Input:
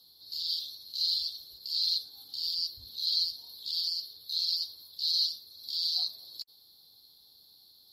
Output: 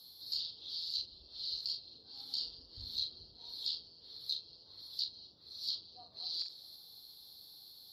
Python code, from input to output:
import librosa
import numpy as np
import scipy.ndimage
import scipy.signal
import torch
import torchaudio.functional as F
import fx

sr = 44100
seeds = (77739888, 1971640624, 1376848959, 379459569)

y = fx.reverse_delay(x, sr, ms=322, wet_db=-10.0)
y = fx.env_lowpass_down(y, sr, base_hz=800.0, full_db=-27.5)
y = fx.doubler(y, sr, ms=41.0, db=-8)
y = y * librosa.db_to_amplitude(2.5)